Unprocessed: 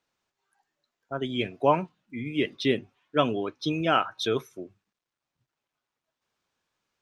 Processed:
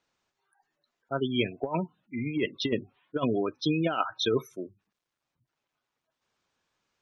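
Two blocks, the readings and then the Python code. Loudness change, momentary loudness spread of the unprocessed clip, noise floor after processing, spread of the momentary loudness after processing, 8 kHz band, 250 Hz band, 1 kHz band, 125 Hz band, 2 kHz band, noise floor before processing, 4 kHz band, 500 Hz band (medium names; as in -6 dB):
-2.5 dB, 14 LU, under -85 dBFS, 10 LU, -0.5 dB, 0.0 dB, -6.5 dB, 0.0 dB, -3.5 dB, under -85 dBFS, -1.5 dB, -3.0 dB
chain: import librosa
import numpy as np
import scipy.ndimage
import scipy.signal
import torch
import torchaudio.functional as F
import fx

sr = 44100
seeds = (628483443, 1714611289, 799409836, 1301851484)

y = fx.spec_gate(x, sr, threshold_db=-20, keep='strong')
y = fx.over_compress(y, sr, threshold_db=-25.0, ratio=-0.5)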